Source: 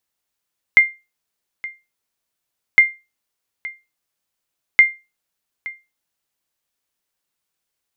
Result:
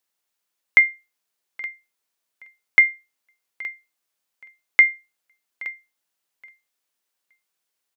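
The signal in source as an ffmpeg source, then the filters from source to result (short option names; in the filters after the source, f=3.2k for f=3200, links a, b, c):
-f lavfi -i "aevalsrc='0.841*(sin(2*PI*2100*mod(t,2.01))*exp(-6.91*mod(t,2.01)/0.25)+0.106*sin(2*PI*2100*max(mod(t,2.01)-0.87,0))*exp(-6.91*max(mod(t,2.01)-0.87,0)/0.25))':d=6.03:s=44100"
-filter_complex "[0:a]acrossover=split=2800[a][b];[b]acompressor=threshold=-27dB:ratio=4:attack=1:release=60[c];[a][c]amix=inputs=2:normalize=0,highpass=f=290:p=1,aecho=1:1:823|1646:0.075|0.0202"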